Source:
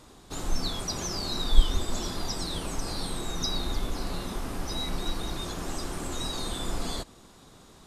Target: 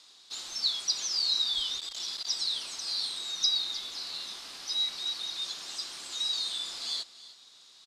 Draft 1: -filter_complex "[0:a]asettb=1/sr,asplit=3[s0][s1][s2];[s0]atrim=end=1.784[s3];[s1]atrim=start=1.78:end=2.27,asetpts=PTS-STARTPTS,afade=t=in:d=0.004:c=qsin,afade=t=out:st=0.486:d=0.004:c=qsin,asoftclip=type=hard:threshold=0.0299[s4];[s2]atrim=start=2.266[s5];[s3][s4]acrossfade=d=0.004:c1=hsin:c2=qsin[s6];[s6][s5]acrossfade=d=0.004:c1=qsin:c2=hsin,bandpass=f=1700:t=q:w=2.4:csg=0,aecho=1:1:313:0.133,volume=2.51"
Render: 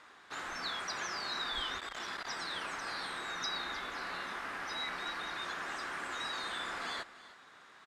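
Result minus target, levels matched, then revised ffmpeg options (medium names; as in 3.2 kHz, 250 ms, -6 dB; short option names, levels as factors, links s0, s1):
2 kHz band +19.0 dB
-filter_complex "[0:a]asettb=1/sr,asplit=3[s0][s1][s2];[s0]atrim=end=1.784[s3];[s1]atrim=start=1.78:end=2.27,asetpts=PTS-STARTPTS,afade=t=in:d=0.004:c=qsin,afade=t=out:st=0.486:d=0.004:c=qsin,asoftclip=type=hard:threshold=0.0299[s4];[s2]atrim=start=2.266[s5];[s3][s4]acrossfade=d=0.004:c1=hsin:c2=qsin[s6];[s6][s5]acrossfade=d=0.004:c1=qsin:c2=hsin,bandpass=f=4300:t=q:w=2.4:csg=0,aecho=1:1:313:0.133,volume=2.51"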